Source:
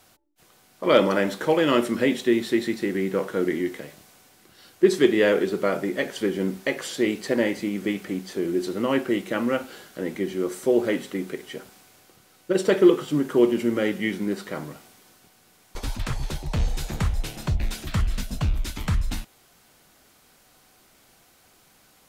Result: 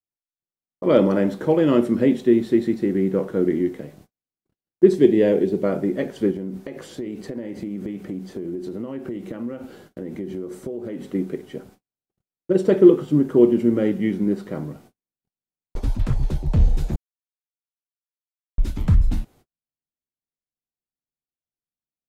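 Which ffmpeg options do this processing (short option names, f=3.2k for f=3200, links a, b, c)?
-filter_complex "[0:a]asettb=1/sr,asplit=3[a][b][c];[a]atrim=end=4.944[d];[b]atrim=start=4.94:end=5.64,asetpts=PTS-STARTPTS,afade=t=in:d=0.004:c=qsin,afade=t=out:st=0.696:d=0.004:c=qsin,equalizer=f=1.3k:w=3.5:g=-13.5[e];[c]atrim=start=5.636[f];[d][e]acrossfade=d=0.004:c1=hsin:c2=qsin[g];[g][f]acrossfade=d=0.004:c1=qsin:c2=hsin,asettb=1/sr,asplit=3[h][i][j];[h]atrim=end=6.314[k];[i]atrim=start=6.31:end=11.08,asetpts=PTS-STARTPTS,afade=t=in:d=0.004:c=qsin,afade=t=out:st=4.766:d=0.004:c=qsin,acompressor=threshold=-30dB:ratio=10:attack=3.2:release=140:knee=1:detection=peak[l];[j]atrim=start=11.076[m];[k][l]acrossfade=d=0.004:c1=hsin:c2=qsin[n];[n][m]acrossfade=d=0.004:c1=qsin:c2=hsin,asplit=3[o][p][q];[o]atrim=end=16.96,asetpts=PTS-STARTPTS,afade=t=out:st=16.956:d=0.004:c=hsin[r];[p]atrim=start=16.96:end=18.58,asetpts=PTS-STARTPTS,volume=0[s];[q]atrim=start=18.58,asetpts=PTS-STARTPTS,afade=t=in:d=0.004:c=hsin[t];[r][s][t]concat=n=3:v=0:a=1,tiltshelf=f=710:g=9,agate=range=-46dB:threshold=-46dB:ratio=16:detection=peak,volume=-1dB"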